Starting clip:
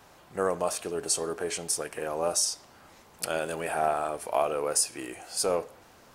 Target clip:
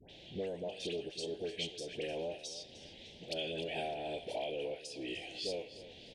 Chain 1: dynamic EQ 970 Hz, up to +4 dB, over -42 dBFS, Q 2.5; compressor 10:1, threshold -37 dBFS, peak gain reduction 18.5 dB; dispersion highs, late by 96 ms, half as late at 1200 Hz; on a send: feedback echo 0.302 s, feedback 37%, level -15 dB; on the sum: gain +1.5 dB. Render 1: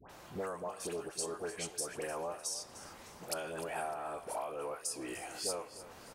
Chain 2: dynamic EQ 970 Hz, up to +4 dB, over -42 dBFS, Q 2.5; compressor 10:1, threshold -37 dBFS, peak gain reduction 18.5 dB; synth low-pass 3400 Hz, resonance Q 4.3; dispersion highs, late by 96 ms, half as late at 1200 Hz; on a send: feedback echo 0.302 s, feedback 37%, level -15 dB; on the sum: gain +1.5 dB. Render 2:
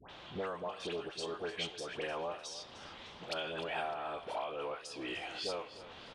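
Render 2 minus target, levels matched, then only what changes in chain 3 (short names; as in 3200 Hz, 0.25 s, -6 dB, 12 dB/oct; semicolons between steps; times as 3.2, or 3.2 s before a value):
1000 Hz band +6.5 dB
add after dynamic EQ: Butterworth band-stop 1200 Hz, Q 0.63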